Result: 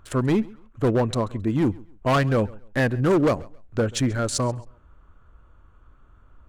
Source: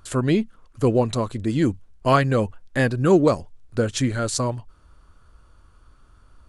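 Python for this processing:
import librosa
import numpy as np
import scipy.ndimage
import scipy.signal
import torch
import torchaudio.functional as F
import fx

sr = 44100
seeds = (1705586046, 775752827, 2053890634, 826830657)

y = fx.wiener(x, sr, points=9)
y = np.clip(y, -10.0 ** (-15.5 / 20.0), 10.0 ** (-15.5 / 20.0))
y = fx.echo_feedback(y, sr, ms=135, feedback_pct=24, wet_db=-23.0)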